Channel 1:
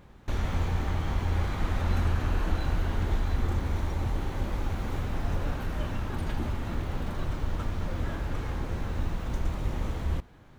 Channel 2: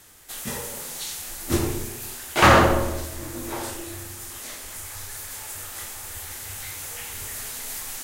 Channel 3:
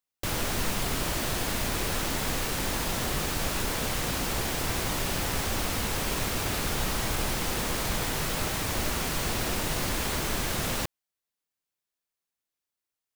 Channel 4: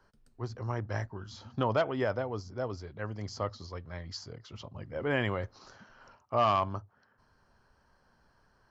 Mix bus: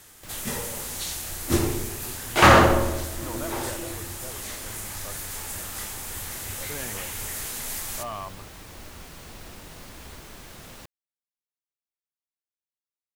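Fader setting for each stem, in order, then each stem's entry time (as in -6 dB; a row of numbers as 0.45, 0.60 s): -20.0, +0.5, -14.5, -9.0 dB; 0.00, 0.00, 0.00, 1.65 s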